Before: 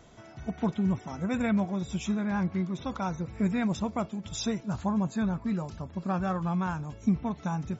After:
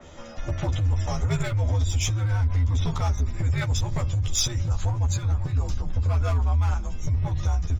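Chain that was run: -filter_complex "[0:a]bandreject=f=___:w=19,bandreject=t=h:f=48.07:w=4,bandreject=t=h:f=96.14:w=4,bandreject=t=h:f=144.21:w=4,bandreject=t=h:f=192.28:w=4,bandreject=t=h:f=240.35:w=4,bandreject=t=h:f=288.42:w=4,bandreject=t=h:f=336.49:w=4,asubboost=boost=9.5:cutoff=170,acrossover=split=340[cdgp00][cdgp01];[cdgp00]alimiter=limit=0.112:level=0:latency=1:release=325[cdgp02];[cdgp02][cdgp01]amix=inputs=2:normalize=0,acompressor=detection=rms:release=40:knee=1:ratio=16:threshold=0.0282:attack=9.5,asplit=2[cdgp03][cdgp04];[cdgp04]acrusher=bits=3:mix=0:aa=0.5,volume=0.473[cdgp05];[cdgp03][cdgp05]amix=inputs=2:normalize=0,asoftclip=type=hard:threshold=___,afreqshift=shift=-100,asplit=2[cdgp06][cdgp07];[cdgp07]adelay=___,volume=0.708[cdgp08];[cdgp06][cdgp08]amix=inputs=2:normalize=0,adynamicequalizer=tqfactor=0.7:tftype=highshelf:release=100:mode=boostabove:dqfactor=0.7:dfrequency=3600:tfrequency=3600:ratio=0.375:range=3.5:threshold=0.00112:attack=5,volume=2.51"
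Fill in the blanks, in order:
4.5k, 0.0376, 12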